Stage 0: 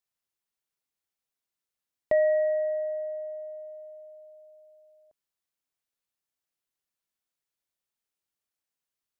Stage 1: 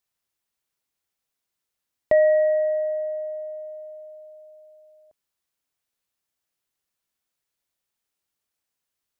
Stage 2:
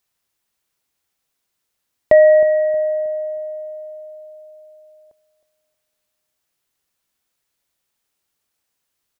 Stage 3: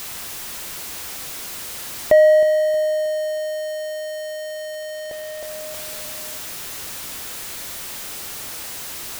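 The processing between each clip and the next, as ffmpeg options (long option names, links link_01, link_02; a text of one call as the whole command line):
ffmpeg -i in.wav -af "equalizer=frequency=69:width=1.5:gain=2.5,volume=5.5dB" out.wav
ffmpeg -i in.wav -filter_complex "[0:a]asplit=2[link_01][link_02];[link_02]adelay=315,lowpass=frequency=980:poles=1,volume=-13.5dB,asplit=2[link_03][link_04];[link_04]adelay=315,lowpass=frequency=980:poles=1,volume=0.43,asplit=2[link_05][link_06];[link_06]adelay=315,lowpass=frequency=980:poles=1,volume=0.43,asplit=2[link_07][link_08];[link_08]adelay=315,lowpass=frequency=980:poles=1,volume=0.43[link_09];[link_01][link_03][link_05][link_07][link_09]amix=inputs=5:normalize=0,volume=7.5dB" out.wav
ffmpeg -i in.wav -af "aeval=exprs='val(0)+0.5*0.075*sgn(val(0))':channel_layout=same,volume=-3dB" out.wav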